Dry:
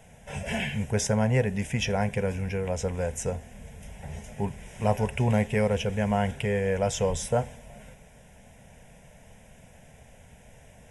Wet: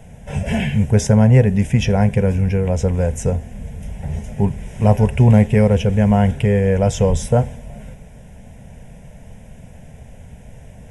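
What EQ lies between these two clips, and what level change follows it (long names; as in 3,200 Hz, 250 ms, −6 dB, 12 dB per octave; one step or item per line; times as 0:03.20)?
low-shelf EQ 430 Hz +11.5 dB
+3.5 dB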